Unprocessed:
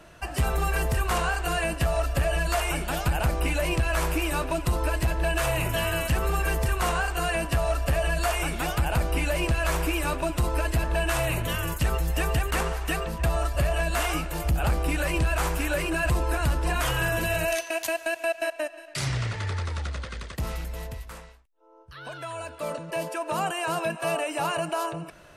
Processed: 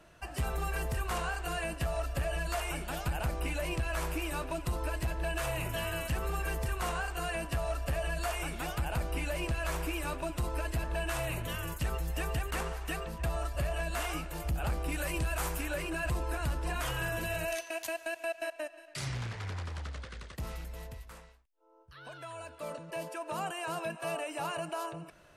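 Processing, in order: 14.92–15.61 s: treble shelf 7.8 kHz +9 dB; 19.14–20.33 s: loudspeaker Doppler distortion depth 0.65 ms; trim -8.5 dB

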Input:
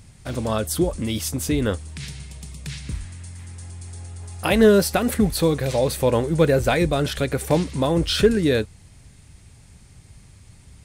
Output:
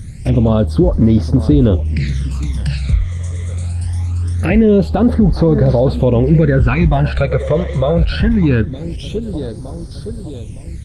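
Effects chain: 3.11–3.73 s: dynamic bell 170 Hz, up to +6 dB, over -60 dBFS, Q 3.5; in parallel at -1 dB: compression 16:1, threshold -26 dBFS, peak gain reduction 17 dB; on the sum: feedback delay 914 ms, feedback 47%, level -16.5 dB; phase shifter stages 12, 0.23 Hz, lowest notch 260–2700 Hz; on a send at -19.5 dB: reverberation, pre-delay 3 ms; on the sum: peak limiter -13 dBFS, peak gain reduction 9 dB; low-pass that closes with the level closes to 2.4 kHz, closed at -21 dBFS; bass shelf 220 Hz +5.5 dB; trim +7.5 dB; Opus 24 kbps 48 kHz

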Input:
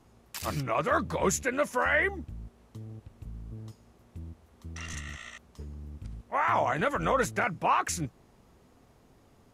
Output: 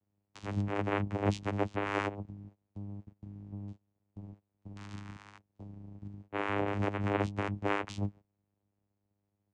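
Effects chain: gate -47 dBFS, range -19 dB; vocoder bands 4, saw 101 Hz; trim -4 dB

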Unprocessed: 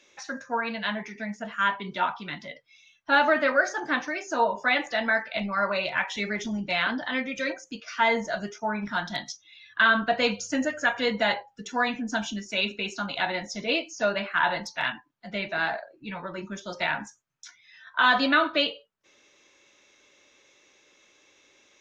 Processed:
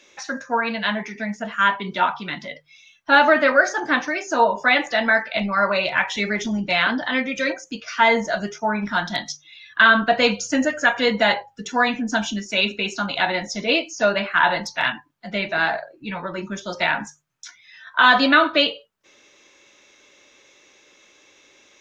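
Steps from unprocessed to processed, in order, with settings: hum notches 50/100/150 Hz; trim +6.5 dB

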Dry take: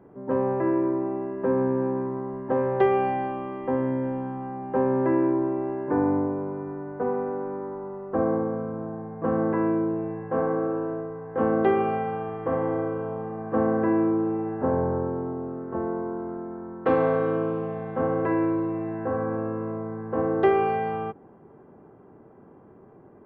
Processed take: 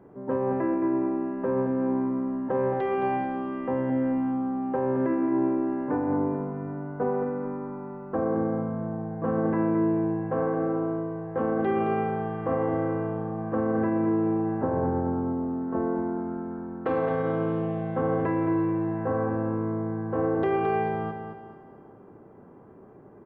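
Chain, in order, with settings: peak limiter -18 dBFS, peak gain reduction 9.5 dB; feedback delay 219 ms, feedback 40%, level -7.5 dB; on a send at -20.5 dB: reverberation RT60 3.0 s, pre-delay 20 ms

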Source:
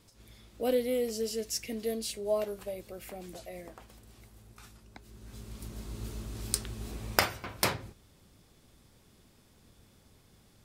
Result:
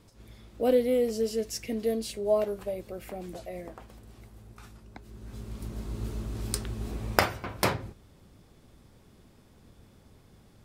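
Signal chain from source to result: treble shelf 2.1 kHz -8.5 dB; trim +5.5 dB

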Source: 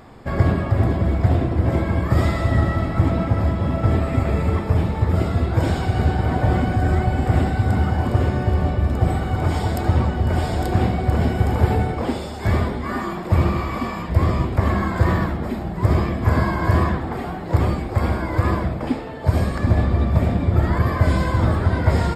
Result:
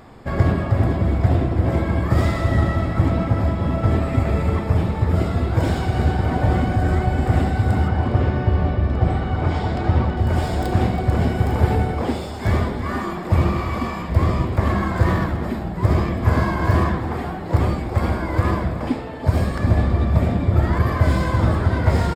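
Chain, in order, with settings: tracing distortion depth 0.16 ms; 7.88–10.17 s: low-pass 4.4 kHz 12 dB/octave; delay 327 ms -14 dB

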